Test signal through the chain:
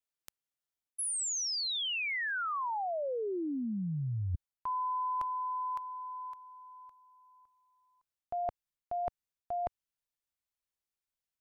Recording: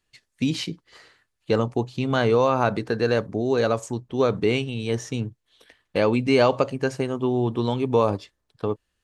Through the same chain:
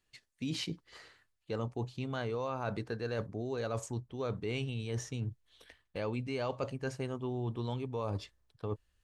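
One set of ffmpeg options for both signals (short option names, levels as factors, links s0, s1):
-af "asubboost=boost=2.5:cutoff=130,areverse,acompressor=threshold=0.0316:ratio=5,areverse,volume=0.631"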